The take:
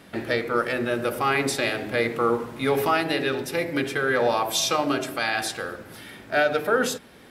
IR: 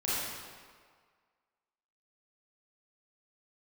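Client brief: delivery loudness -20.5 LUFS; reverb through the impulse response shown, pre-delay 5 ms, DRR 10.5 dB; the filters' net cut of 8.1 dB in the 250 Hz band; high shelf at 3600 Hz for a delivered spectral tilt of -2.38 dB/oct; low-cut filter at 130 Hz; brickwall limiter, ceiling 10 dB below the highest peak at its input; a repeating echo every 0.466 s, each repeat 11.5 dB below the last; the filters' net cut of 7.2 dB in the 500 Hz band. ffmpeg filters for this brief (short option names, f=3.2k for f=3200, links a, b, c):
-filter_complex "[0:a]highpass=130,equalizer=f=250:t=o:g=-7.5,equalizer=f=500:t=o:g=-7,highshelf=f=3.6k:g=9,alimiter=limit=-15.5dB:level=0:latency=1,aecho=1:1:466|932|1398:0.266|0.0718|0.0194,asplit=2[a][b];[1:a]atrim=start_sample=2205,adelay=5[c];[b][c]afir=irnorm=-1:irlink=0,volume=-18.5dB[d];[a][d]amix=inputs=2:normalize=0,volume=6dB"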